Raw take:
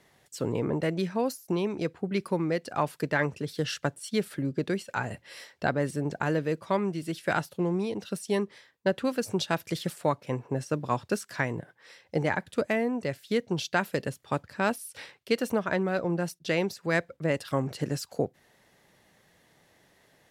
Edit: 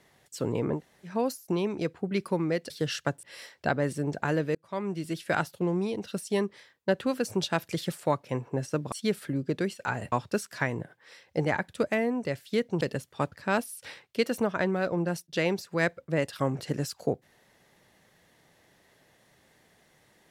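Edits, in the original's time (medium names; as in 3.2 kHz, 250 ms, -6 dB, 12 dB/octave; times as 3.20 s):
0.78–1.08 s: room tone, crossfade 0.10 s
2.70–3.48 s: delete
4.01–5.21 s: move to 10.90 s
6.53–6.99 s: fade in
13.59–13.93 s: delete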